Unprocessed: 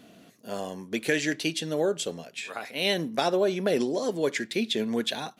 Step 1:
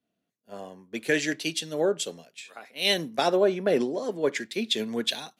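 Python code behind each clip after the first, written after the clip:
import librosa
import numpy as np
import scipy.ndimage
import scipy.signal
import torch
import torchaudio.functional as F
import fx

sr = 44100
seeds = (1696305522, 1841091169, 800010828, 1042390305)

y = fx.low_shelf(x, sr, hz=110.0, db=-6.5)
y = fx.band_widen(y, sr, depth_pct=100)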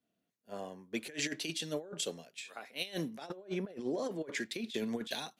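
y = fx.over_compress(x, sr, threshold_db=-30.0, ratio=-0.5)
y = F.gain(torch.from_numpy(y), -7.0).numpy()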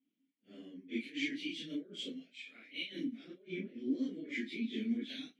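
y = fx.phase_scramble(x, sr, seeds[0], window_ms=100)
y = fx.vowel_filter(y, sr, vowel='i')
y = F.gain(torch.from_numpy(y), 9.0).numpy()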